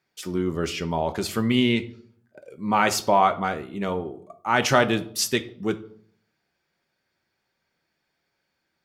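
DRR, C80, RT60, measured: 8.0 dB, 20.0 dB, 0.60 s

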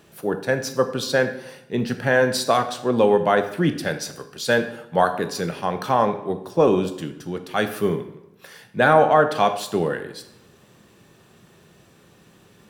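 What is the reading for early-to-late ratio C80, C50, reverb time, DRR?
14.0 dB, 11.0 dB, 0.85 s, 8.0 dB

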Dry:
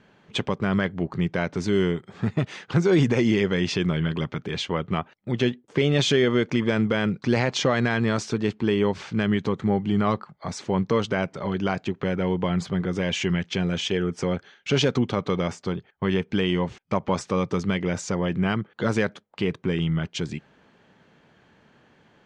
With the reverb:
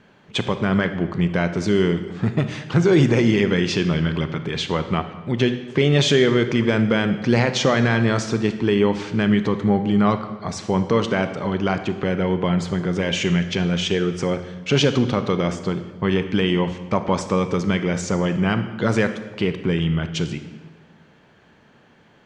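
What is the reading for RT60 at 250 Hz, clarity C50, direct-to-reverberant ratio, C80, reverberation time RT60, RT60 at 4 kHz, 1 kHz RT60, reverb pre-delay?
1.5 s, 10.5 dB, 9.0 dB, 12.5 dB, 1.4 s, 1.0 s, 1.3 s, 28 ms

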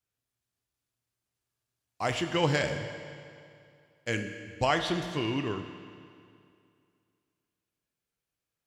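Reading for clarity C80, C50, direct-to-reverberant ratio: 8.5 dB, 7.5 dB, 6.0 dB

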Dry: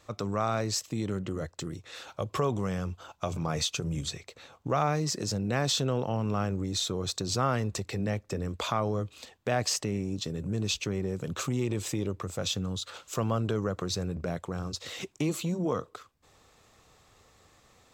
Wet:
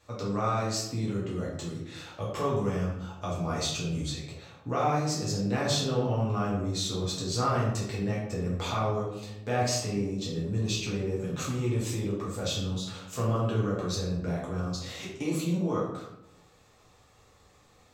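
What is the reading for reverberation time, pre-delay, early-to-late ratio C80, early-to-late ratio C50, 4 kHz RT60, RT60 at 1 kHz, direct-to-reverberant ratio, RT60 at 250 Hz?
0.85 s, 5 ms, 6.0 dB, 2.5 dB, 0.50 s, 0.80 s, -6.5 dB, 1.1 s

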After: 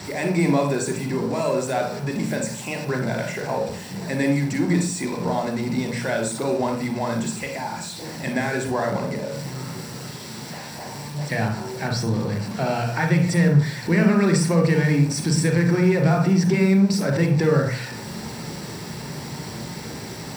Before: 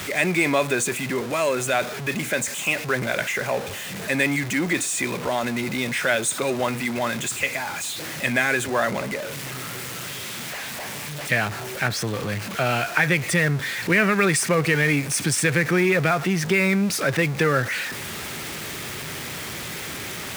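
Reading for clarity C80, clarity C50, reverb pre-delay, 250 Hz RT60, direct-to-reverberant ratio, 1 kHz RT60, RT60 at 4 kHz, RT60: 10.5 dB, 6.0 dB, 34 ms, 0.70 s, 2.0 dB, 0.45 s, 0.40 s, 0.40 s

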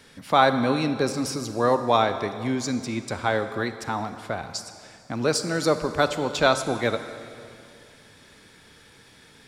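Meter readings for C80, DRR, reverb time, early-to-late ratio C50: 11.0 dB, 9.5 dB, 2.4 s, 10.0 dB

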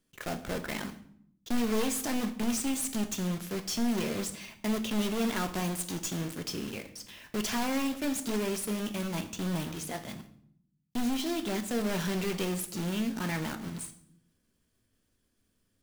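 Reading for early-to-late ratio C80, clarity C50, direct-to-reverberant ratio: 15.5 dB, 12.5 dB, 7.0 dB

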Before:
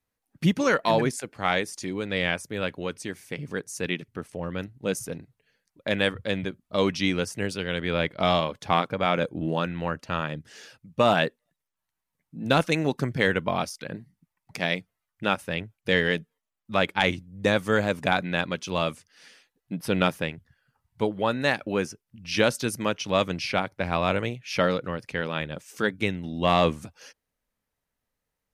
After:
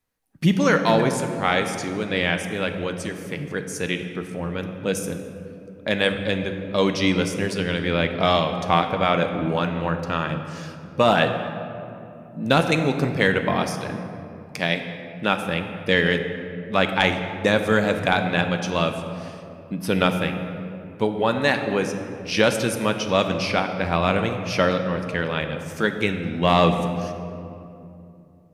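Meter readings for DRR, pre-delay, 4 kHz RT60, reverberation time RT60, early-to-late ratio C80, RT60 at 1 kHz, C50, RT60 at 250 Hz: 6.0 dB, 4 ms, 1.4 s, 2.8 s, 8.5 dB, 2.5 s, 7.5 dB, 3.6 s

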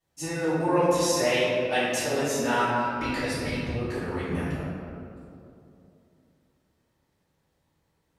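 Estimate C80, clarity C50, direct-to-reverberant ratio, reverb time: -0.5 dB, -3.0 dB, -14.0 dB, 2.8 s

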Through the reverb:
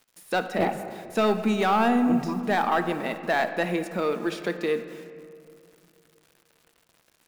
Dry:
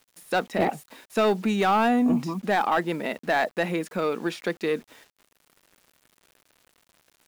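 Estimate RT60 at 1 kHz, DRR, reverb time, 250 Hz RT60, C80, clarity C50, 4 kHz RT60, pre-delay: 2.3 s, 8.5 dB, 2.5 s, 3.0 s, 10.5 dB, 10.0 dB, 1.3 s, 6 ms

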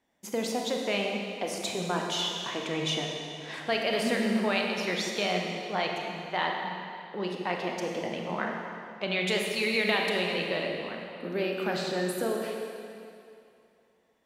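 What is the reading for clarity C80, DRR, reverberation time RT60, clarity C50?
2.5 dB, 0.5 dB, 2.6 s, 1.5 dB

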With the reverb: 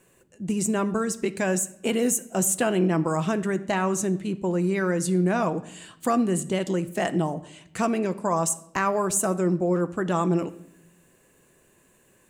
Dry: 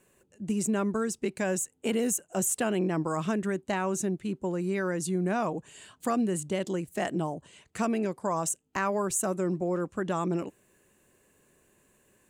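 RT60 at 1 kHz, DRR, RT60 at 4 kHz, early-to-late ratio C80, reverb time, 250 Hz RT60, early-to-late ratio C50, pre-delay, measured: 0.70 s, 10.0 dB, 0.65 s, 19.5 dB, 0.75 s, 1.1 s, 17.0 dB, 6 ms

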